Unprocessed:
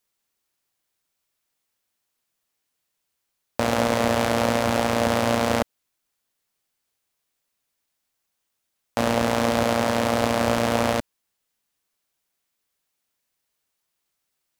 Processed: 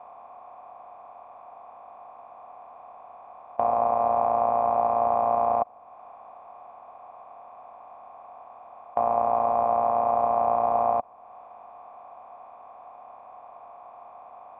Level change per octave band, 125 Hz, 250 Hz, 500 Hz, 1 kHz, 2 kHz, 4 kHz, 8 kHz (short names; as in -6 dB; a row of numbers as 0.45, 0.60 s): -17.5 dB, -16.5 dB, -1.5 dB, +4.0 dB, under -20 dB, under -35 dB, under -40 dB